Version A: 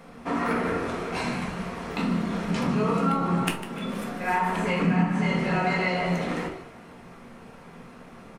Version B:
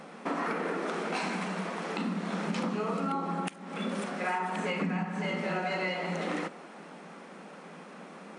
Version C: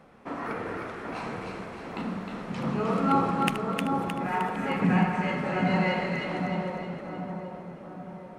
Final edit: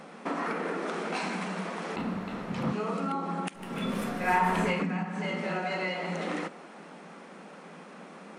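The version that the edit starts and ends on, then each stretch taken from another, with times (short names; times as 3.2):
B
1.96–2.72 from C
3.66–4.74 from A, crossfade 0.24 s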